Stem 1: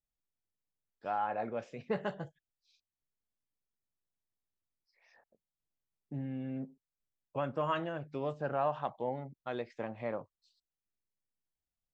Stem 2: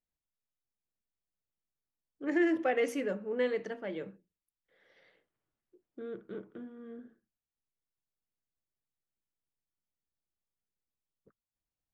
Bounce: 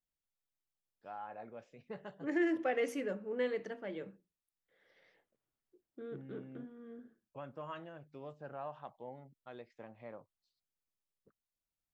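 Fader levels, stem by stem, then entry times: -12.0 dB, -4.0 dB; 0.00 s, 0.00 s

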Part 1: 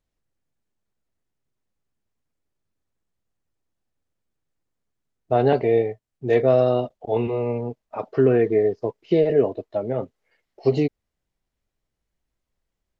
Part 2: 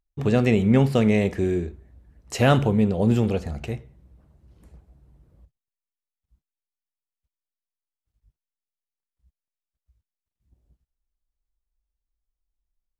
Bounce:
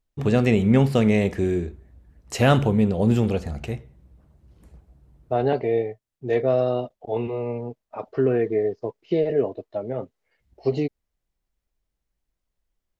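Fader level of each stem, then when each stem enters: -3.5 dB, +0.5 dB; 0.00 s, 0.00 s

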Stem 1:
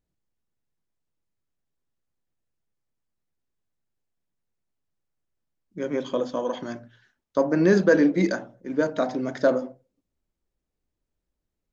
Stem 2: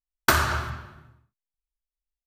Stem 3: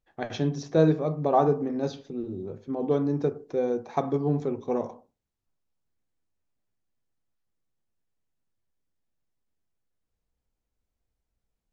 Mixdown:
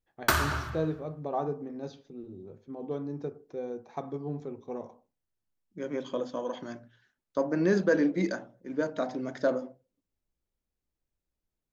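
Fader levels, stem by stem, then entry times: -6.5 dB, -5.0 dB, -10.0 dB; 0.00 s, 0.00 s, 0.00 s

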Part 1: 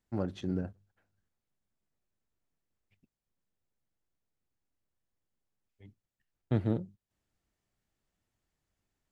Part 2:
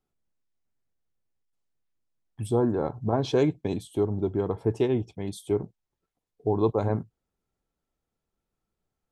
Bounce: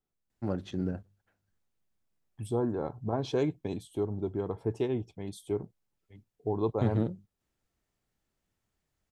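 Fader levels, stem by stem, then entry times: +1.0 dB, -6.0 dB; 0.30 s, 0.00 s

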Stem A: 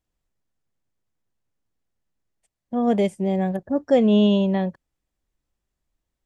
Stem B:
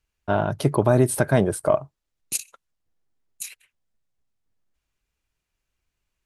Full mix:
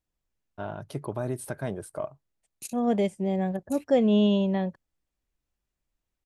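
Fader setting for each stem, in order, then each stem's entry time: -4.5 dB, -13.5 dB; 0.00 s, 0.30 s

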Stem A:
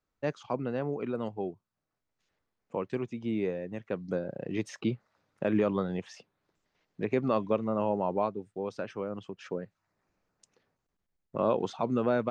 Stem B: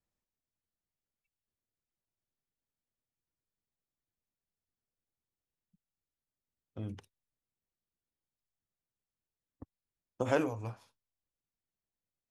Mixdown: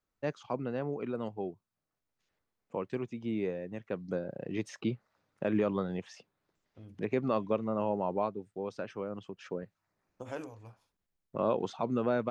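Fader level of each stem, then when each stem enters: -2.5 dB, -11.0 dB; 0.00 s, 0.00 s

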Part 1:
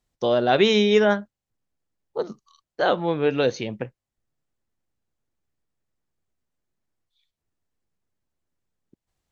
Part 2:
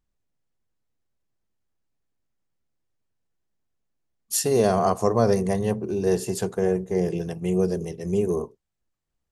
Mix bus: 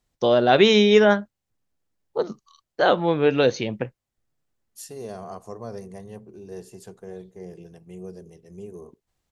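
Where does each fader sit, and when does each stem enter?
+2.5 dB, -16.0 dB; 0.00 s, 0.45 s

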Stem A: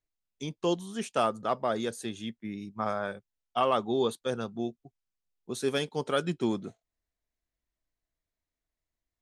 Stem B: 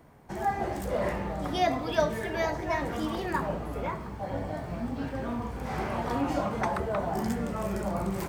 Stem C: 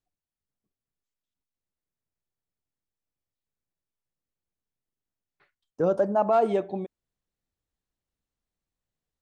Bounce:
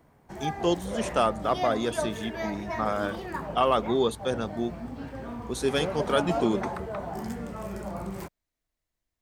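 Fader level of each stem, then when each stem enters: +3.0 dB, -4.5 dB, -9.5 dB; 0.00 s, 0.00 s, 0.00 s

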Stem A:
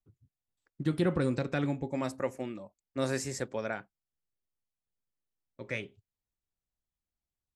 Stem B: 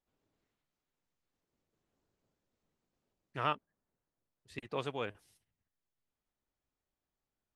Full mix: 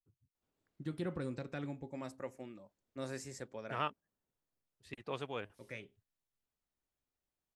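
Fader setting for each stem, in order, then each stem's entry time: -11.0 dB, -3.5 dB; 0.00 s, 0.35 s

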